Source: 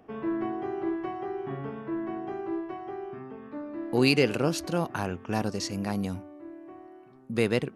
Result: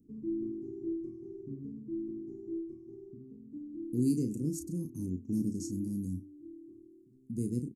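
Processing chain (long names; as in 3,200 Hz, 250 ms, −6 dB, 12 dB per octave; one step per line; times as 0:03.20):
elliptic band-stop filter 300–7,100 Hz, stop band 40 dB
0:04.87–0:05.88: dynamic equaliser 280 Hz, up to +6 dB, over −46 dBFS, Q 1.8
double-tracking delay 33 ms −7.5 dB
level −3.5 dB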